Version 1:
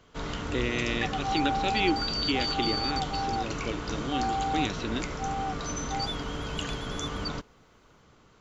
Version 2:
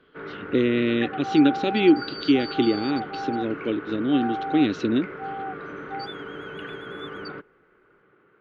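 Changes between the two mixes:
speech: add bell 280 Hz +12.5 dB 2 oct; first sound: add speaker cabinet 210–2200 Hz, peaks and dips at 240 Hz -7 dB, 380 Hz +8 dB, 680 Hz -8 dB, 970 Hz -8 dB, 1500 Hz +6 dB; second sound: add LPF 2300 Hz 6 dB/oct

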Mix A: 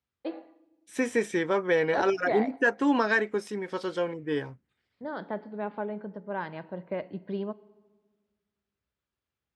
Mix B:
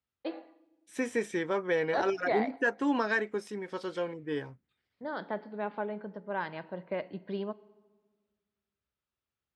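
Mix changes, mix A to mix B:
first voice: add tilt +1.5 dB/oct; second voice -4.5 dB

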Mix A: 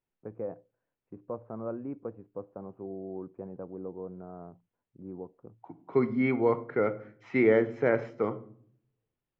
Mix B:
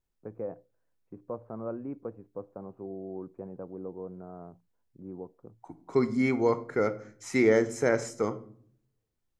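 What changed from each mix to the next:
second voice: remove elliptic band-pass 110–3000 Hz, stop band 50 dB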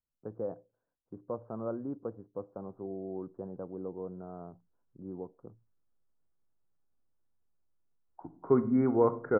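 second voice: entry +2.55 s; master: add steep low-pass 1600 Hz 48 dB/oct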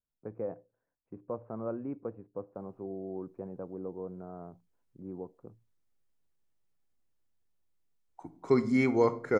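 master: remove steep low-pass 1600 Hz 48 dB/oct

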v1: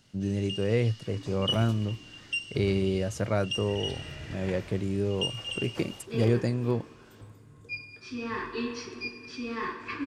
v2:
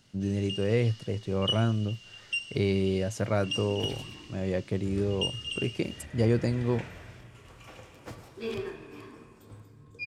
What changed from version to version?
second sound: entry +2.30 s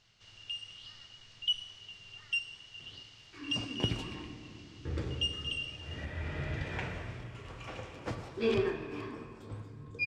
speech: muted; second sound +5.5 dB; master: add air absorption 77 m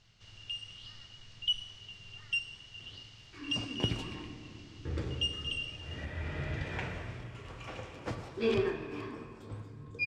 first sound: add low shelf 220 Hz +8.5 dB

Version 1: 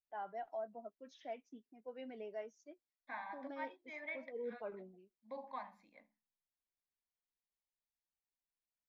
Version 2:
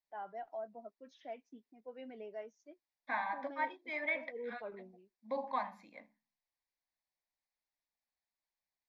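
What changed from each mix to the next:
first voice: add air absorption 60 m; second voice +9.5 dB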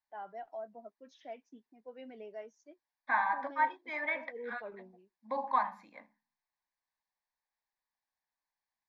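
first voice: remove air absorption 60 m; second voice: add band shelf 1200 Hz +8 dB 1.3 oct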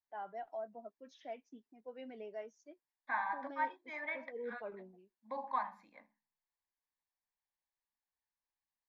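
second voice -6.5 dB

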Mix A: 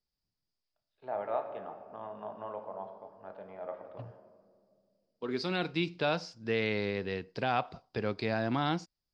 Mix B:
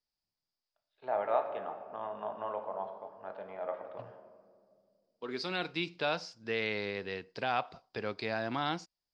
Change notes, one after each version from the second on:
first voice +5.5 dB; master: add low shelf 350 Hz -9.5 dB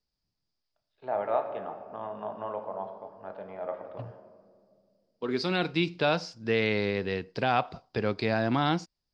second voice +4.5 dB; master: add low shelf 350 Hz +9.5 dB

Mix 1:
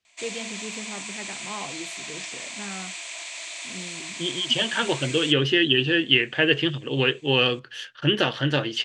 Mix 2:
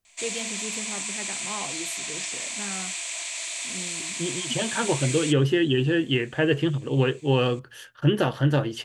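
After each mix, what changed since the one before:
second voice: remove weighting filter D; master: remove air absorption 72 m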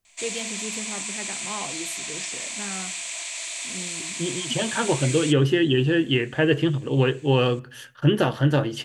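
reverb: on, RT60 0.55 s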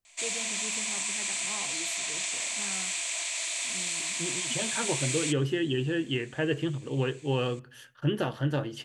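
first voice -8.5 dB; second voice -8.5 dB

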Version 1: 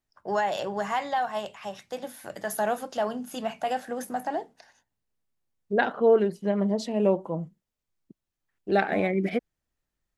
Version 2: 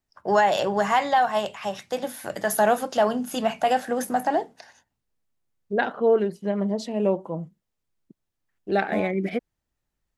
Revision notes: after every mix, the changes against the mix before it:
first voice +7.0 dB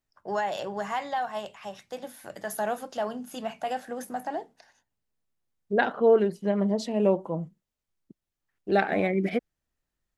first voice -9.5 dB

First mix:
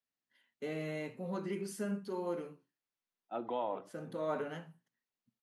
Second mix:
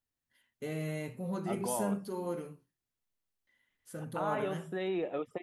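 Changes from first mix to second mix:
second voice: entry -1.85 s; master: remove three-band isolator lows -22 dB, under 170 Hz, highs -14 dB, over 6100 Hz

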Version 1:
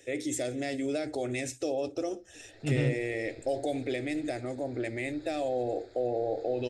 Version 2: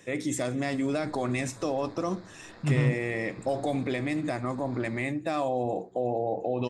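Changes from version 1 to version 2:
second voice -5.0 dB; background: entry -1.65 s; master: remove fixed phaser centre 440 Hz, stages 4

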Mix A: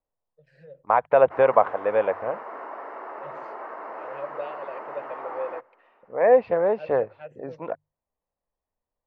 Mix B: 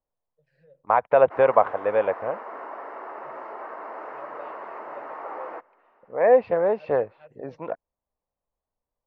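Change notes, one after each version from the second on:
first voice -9.5 dB; second voice: remove notches 50/100/150 Hz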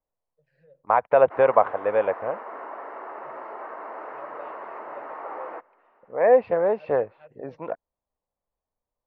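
master: add tone controls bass -1 dB, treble -6 dB

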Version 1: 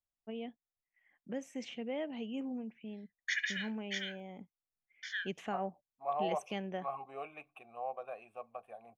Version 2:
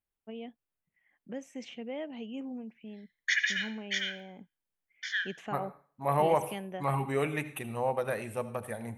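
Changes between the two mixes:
second voice: remove vowel filter a; background +6.0 dB; reverb: on, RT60 0.45 s

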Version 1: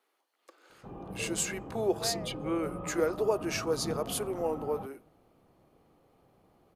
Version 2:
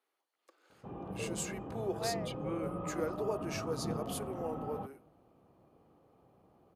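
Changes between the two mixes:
first voice -8.0 dB; master: add HPF 56 Hz

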